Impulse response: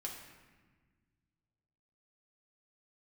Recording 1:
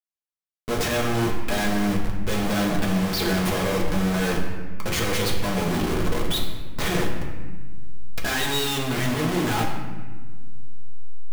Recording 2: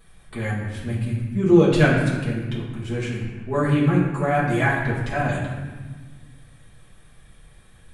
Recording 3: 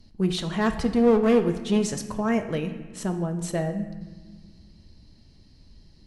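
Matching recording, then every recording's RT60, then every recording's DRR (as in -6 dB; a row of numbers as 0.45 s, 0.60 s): 1; 1.4 s, 1.4 s, 1.5 s; -1.5 dB, -7.0 dB, 6.0 dB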